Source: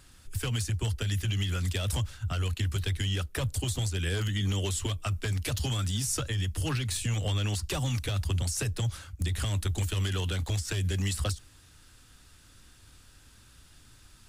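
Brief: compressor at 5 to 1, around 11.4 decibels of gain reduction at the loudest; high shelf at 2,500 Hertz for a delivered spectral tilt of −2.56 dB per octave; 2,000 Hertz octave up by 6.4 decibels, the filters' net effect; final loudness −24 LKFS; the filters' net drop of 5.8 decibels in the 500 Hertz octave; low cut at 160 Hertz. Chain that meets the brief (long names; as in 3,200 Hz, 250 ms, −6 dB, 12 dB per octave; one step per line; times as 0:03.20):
high-pass filter 160 Hz
parametric band 500 Hz −8 dB
parametric band 2,000 Hz +4 dB
high-shelf EQ 2,500 Hz +9 dB
downward compressor 5 to 1, threshold −33 dBFS
level +11 dB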